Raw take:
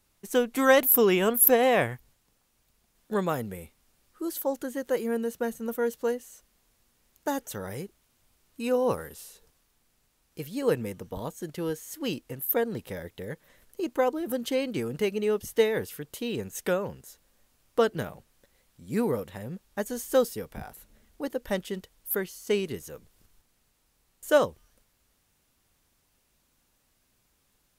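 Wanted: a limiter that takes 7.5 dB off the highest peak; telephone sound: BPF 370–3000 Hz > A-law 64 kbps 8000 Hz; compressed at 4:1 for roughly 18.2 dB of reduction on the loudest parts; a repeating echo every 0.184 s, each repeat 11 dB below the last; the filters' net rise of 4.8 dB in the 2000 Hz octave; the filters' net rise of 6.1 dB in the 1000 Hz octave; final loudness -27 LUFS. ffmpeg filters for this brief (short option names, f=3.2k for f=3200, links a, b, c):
-af "equalizer=f=1k:t=o:g=7.5,equalizer=f=2k:t=o:g=4,acompressor=threshold=-34dB:ratio=4,alimiter=level_in=3dB:limit=-24dB:level=0:latency=1,volume=-3dB,highpass=370,lowpass=3k,aecho=1:1:184|368|552:0.282|0.0789|0.0221,volume=14.5dB" -ar 8000 -c:a pcm_alaw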